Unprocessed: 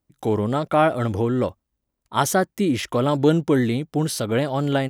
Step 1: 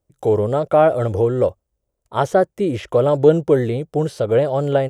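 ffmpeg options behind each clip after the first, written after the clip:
-filter_complex "[0:a]highshelf=f=4.6k:g=-8,acrossover=split=3900[a][b];[b]acompressor=threshold=-51dB:ratio=4:attack=1:release=60[c];[a][c]amix=inputs=2:normalize=0,equalizer=f=250:t=o:w=1:g=-11,equalizer=f=500:t=o:w=1:g=8,equalizer=f=1k:t=o:w=1:g=-5,equalizer=f=2k:t=o:w=1:g=-6,equalizer=f=4k:t=o:w=1:g=-5,equalizer=f=8k:t=o:w=1:g=5,volume=4.5dB"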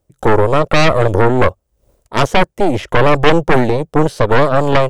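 -af "aeval=exprs='0.891*(cos(1*acos(clip(val(0)/0.891,-1,1)))-cos(1*PI/2))+0.316*(cos(6*acos(clip(val(0)/0.891,-1,1)))-cos(6*PI/2))':c=same,aeval=exprs='1.41*sin(PI/2*2*val(0)/1.41)':c=same,dynaudnorm=f=160:g=3:m=16dB,volume=-1dB"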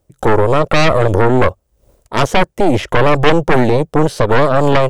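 -af "alimiter=level_in=5dB:limit=-1dB:release=50:level=0:latency=1,volume=-1dB"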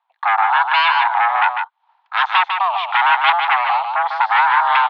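-af "highpass=f=460:t=q:w=0.5412,highpass=f=460:t=q:w=1.307,lowpass=f=3.4k:t=q:w=0.5176,lowpass=f=3.4k:t=q:w=0.7071,lowpass=f=3.4k:t=q:w=1.932,afreqshift=360,aecho=1:1:150:0.501,volume=-1dB"

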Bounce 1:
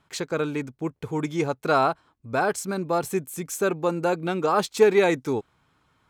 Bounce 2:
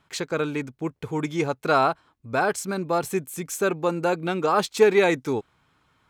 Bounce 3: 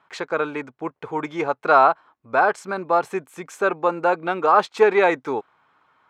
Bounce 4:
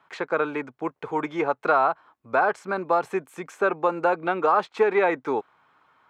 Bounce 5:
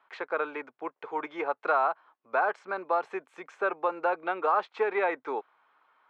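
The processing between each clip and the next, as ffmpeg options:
-af "equalizer=f=2.5k:w=0.67:g=2.5"
-af "bandpass=f=990:t=q:w=0.99:csg=0,volume=7.5dB"
-filter_complex "[0:a]acrossover=split=160|3000[a][b][c];[a]acompressor=threshold=-50dB:ratio=4[d];[b]acompressor=threshold=-17dB:ratio=4[e];[c]acompressor=threshold=-51dB:ratio=4[f];[d][e][f]amix=inputs=3:normalize=0"
-af "highpass=430,lowpass=4k,volume=-4.5dB"

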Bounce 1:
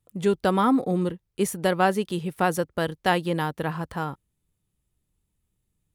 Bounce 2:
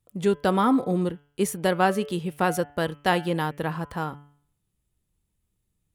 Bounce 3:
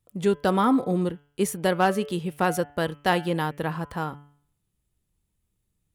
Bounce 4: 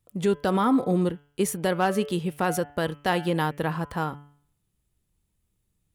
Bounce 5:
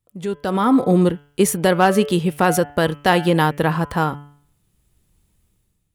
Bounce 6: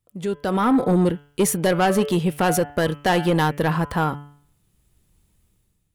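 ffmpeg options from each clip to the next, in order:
-af "bandreject=f=144.4:t=h:w=4,bandreject=f=288.8:t=h:w=4,bandreject=f=433.2:t=h:w=4,bandreject=f=577.6:t=h:w=4,bandreject=f=722:t=h:w=4,bandreject=f=866.4:t=h:w=4,bandreject=f=1.0108k:t=h:w=4,bandreject=f=1.1552k:t=h:w=4,bandreject=f=1.2996k:t=h:w=4,bandreject=f=1.444k:t=h:w=4,bandreject=f=1.5884k:t=h:w=4,bandreject=f=1.7328k:t=h:w=4,bandreject=f=1.8772k:t=h:w=4,bandreject=f=2.0216k:t=h:w=4,bandreject=f=2.166k:t=h:w=4,bandreject=f=2.3104k:t=h:w=4,bandreject=f=2.4548k:t=h:w=4,bandreject=f=2.5992k:t=h:w=4,bandreject=f=2.7436k:t=h:w=4,bandreject=f=2.888k:t=h:w=4,bandreject=f=3.0324k:t=h:w=4,bandreject=f=3.1768k:t=h:w=4,bandreject=f=3.3212k:t=h:w=4"
-af "asoftclip=type=hard:threshold=-11dB"
-af "alimiter=limit=-15dB:level=0:latency=1:release=59,volume=1.5dB"
-af "dynaudnorm=f=180:g=7:m=15dB,volume=-3dB"
-af "asoftclip=type=tanh:threshold=-12dB"

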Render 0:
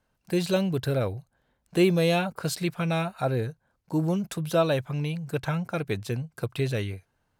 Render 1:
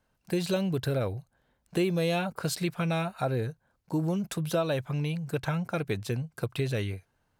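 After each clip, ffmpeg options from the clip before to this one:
-af "acompressor=threshold=-25dB:ratio=3"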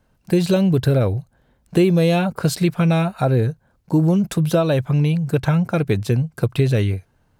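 -af "lowshelf=f=470:g=7.5,volume=6.5dB"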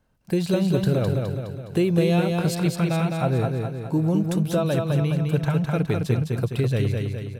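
-af "aecho=1:1:208|416|624|832|1040|1248|1456:0.631|0.334|0.177|0.0939|0.0498|0.0264|0.014,volume=-6dB"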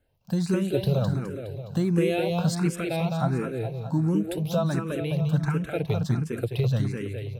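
-filter_complex "[0:a]asplit=2[a][b];[b]afreqshift=1.4[c];[a][c]amix=inputs=2:normalize=1"

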